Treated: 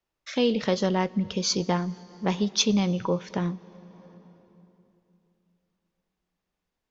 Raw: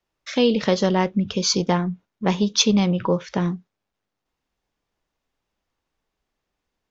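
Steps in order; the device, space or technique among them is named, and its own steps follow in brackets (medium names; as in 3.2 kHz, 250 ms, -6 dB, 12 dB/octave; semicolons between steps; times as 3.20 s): compressed reverb return (on a send at -12 dB: reverberation RT60 2.9 s, pre-delay 103 ms + compression 6:1, threshold -27 dBFS, peak gain reduction 12.5 dB); on the sum: trim -5 dB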